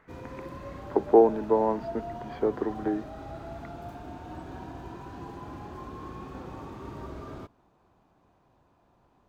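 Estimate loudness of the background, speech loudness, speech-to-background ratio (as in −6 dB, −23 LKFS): −41.5 LKFS, −26.0 LKFS, 15.5 dB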